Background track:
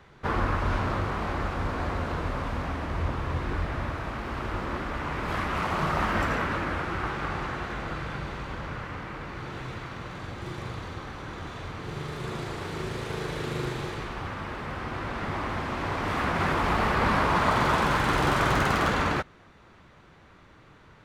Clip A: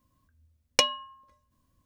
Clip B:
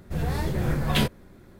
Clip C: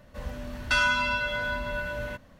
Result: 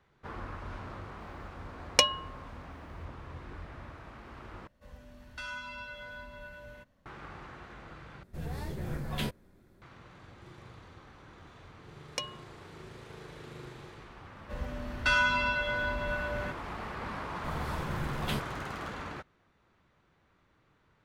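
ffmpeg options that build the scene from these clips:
-filter_complex "[1:a]asplit=2[s0][s1];[3:a]asplit=2[s2][s3];[2:a]asplit=2[s4][s5];[0:a]volume=0.178[s6];[s2]alimiter=limit=0.168:level=0:latency=1:release=305[s7];[s3]highshelf=f=5400:g=-7.5[s8];[s6]asplit=3[s9][s10][s11];[s9]atrim=end=4.674[s12];[s7]atrim=end=2.39,asetpts=PTS-STARTPTS,volume=0.178[s13];[s10]atrim=start=7.056:end=8.234[s14];[s4]atrim=end=1.59,asetpts=PTS-STARTPTS,volume=0.282[s15];[s11]atrim=start=9.816[s16];[s0]atrim=end=1.85,asetpts=PTS-STARTPTS,volume=0.944,afade=t=in:d=0.004:c=hsin,afade=t=out:st=1.846:d=0.004:c=hsin,adelay=1200[s17];[s1]atrim=end=1.85,asetpts=PTS-STARTPTS,volume=0.2,afade=t=in:d=0.004:c=hsin,afade=t=out:st=1.846:d=0.004:c=hsin,adelay=11390[s18];[s8]atrim=end=2.39,asetpts=PTS-STARTPTS,volume=0.841,afade=t=in:d=0.004:c=hsin,afade=t=out:st=2.386:d=0.004:c=hsin,adelay=14350[s19];[s5]atrim=end=1.59,asetpts=PTS-STARTPTS,volume=0.282,afade=t=in:d=0.004:c=hsin,afade=t=out:st=1.586:d=0.004:c=hsin,adelay=17330[s20];[s12][s13]acrossfade=d=0.004:c1=hsin:c2=hsin[s21];[s21][s14]acrossfade=d=0.004:c1=hsin:c2=hsin[s22];[s22][s15]acrossfade=d=0.004:c1=hsin:c2=hsin[s23];[s23][s16]acrossfade=d=0.004:c1=hsin:c2=hsin[s24];[s24][s17][s18][s19][s20]amix=inputs=5:normalize=0"

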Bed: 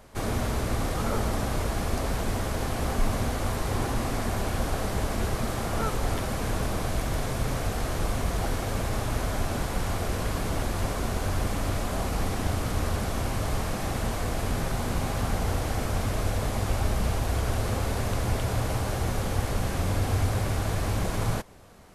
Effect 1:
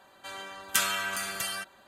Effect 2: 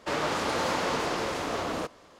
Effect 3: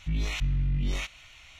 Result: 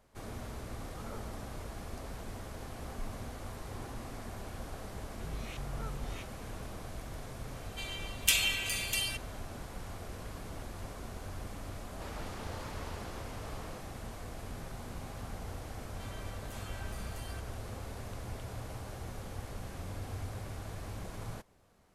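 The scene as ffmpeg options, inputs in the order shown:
-filter_complex "[1:a]asplit=2[s0][s1];[0:a]volume=0.178[s2];[s0]highshelf=f=1900:t=q:w=3:g=9.5[s3];[s1]acompressor=threshold=0.0126:ratio=6:attack=0.1:release=39:knee=1:detection=peak[s4];[3:a]atrim=end=1.59,asetpts=PTS-STARTPTS,volume=0.2,afade=t=in:d=0.004:c=hsin,afade=t=out:st=1.586:d=0.004:c=hsin,adelay=227997S[s5];[s3]atrim=end=1.87,asetpts=PTS-STARTPTS,volume=0.282,afade=t=in:d=0.004:c=hsin,afade=t=out:st=1.866:d=0.004:c=hsin,adelay=7530[s6];[2:a]atrim=end=2.19,asetpts=PTS-STARTPTS,volume=0.126,afade=t=in:d=0.004:c=hsin,afade=t=out:st=2.186:d=0.004:c=hsin,adelay=11940[s7];[s4]atrim=end=1.87,asetpts=PTS-STARTPTS,volume=0.398,afade=t=in:d=0.004:c=hsin,afade=t=out:st=1.866:d=0.004:c=hsin,adelay=15760[s8];[s2][s5][s6][s7][s8]amix=inputs=5:normalize=0"

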